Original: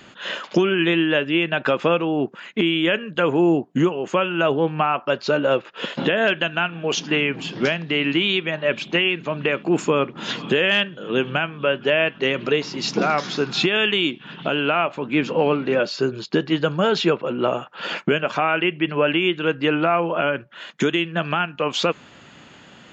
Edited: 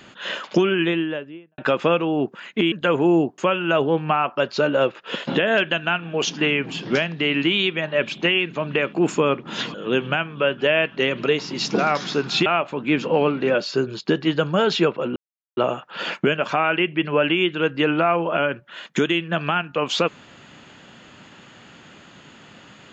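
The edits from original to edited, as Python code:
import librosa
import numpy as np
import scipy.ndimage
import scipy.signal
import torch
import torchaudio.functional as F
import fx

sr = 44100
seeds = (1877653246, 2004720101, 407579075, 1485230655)

y = fx.studio_fade_out(x, sr, start_s=0.64, length_s=0.94)
y = fx.edit(y, sr, fx.cut(start_s=2.72, length_s=0.34),
    fx.cut(start_s=3.72, length_s=0.36),
    fx.cut(start_s=10.44, length_s=0.53),
    fx.cut(start_s=13.69, length_s=1.02),
    fx.insert_silence(at_s=17.41, length_s=0.41), tone=tone)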